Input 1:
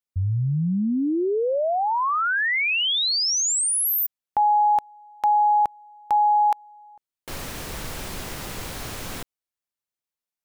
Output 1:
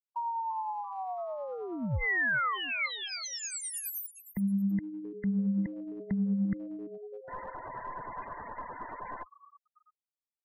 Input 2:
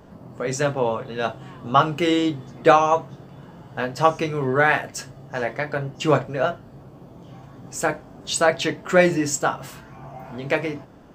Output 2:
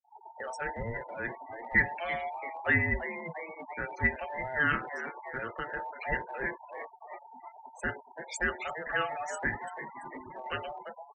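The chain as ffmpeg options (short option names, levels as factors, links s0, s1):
-filter_complex "[0:a]afftfilt=real='real(if(between(b,1,1008),(2*floor((b-1)/48)+1)*48-b,b),0)':imag='imag(if(between(b,1,1008),(2*floor((b-1)/48)+1)*48-b,b),0)*if(between(b,1,1008),-1,1)':win_size=2048:overlap=0.75,highshelf=f=2500:t=q:w=1.5:g=-8,bandreject=f=800:w=12,asplit=2[s0][s1];[s1]asplit=5[s2][s3][s4][s5][s6];[s2]adelay=338,afreqshift=110,volume=0.211[s7];[s3]adelay=676,afreqshift=220,volume=0.112[s8];[s4]adelay=1014,afreqshift=330,volume=0.0596[s9];[s5]adelay=1352,afreqshift=440,volume=0.0316[s10];[s6]adelay=1690,afreqshift=550,volume=0.0166[s11];[s7][s8][s9][s10][s11]amix=inputs=5:normalize=0[s12];[s0][s12]amix=inputs=2:normalize=0,acrossover=split=1600[s13][s14];[s13]aeval=exprs='val(0)*(1-0.5/2+0.5/2*cos(2*PI*9.6*n/s))':c=same[s15];[s14]aeval=exprs='val(0)*(1-0.5/2-0.5/2*cos(2*PI*9.6*n/s))':c=same[s16];[s15][s16]amix=inputs=2:normalize=0,afftfilt=real='re*gte(hypot(re,im),0.0224)':imag='im*gte(hypot(re,im),0.0224)':win_size=1024:overlap=0.75,acrossover=split=200|1100[s17][s18][s19];[s18]acompressor=threshold=0.0224:ratio=6:attack=0.28:release=54:knee=1:detection=peak[s20];[s17][s20][s19]amix=inputs=3:normalize=0,volume=0.562"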